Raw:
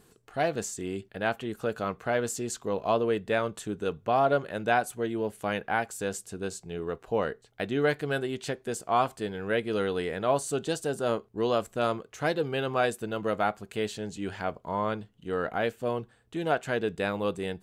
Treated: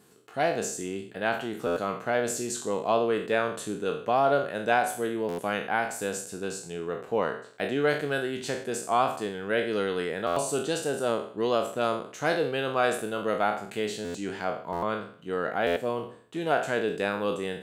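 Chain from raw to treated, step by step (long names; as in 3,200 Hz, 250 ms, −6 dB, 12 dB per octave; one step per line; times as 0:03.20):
peak hold with a decay on every bin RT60 0.52 s
high-pass filter 140 Hz 12 dB per octave
buffer that repeats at 0:01.66/0:05.28/0:10.26/0:14.04/0:14.72/0:15.66, samples 512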